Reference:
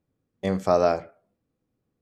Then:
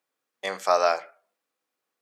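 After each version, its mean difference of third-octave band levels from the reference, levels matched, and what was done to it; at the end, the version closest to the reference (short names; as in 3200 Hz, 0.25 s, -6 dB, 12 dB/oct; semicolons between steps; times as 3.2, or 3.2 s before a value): 8.0 dB: HPF 1000 Hz 12 dB/oct; gain +7 dB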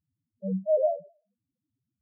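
16.0 dB: loudest bins only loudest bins 2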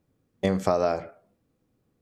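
3.0 dB: compressor 10:1, threshold -25 dBFS, peak gain reduction 11 dB; gain +6 dB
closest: third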